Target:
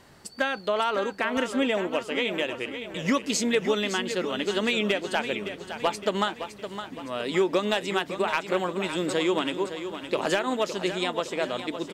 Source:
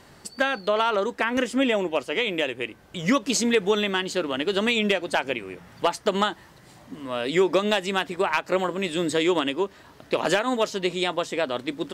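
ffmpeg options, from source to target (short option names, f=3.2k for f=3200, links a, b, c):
-af "aecho=1:1:563|1126|1689|2252|2815:0.316|0.155|0.0759|0.0372|0.0182,volume=-3dB"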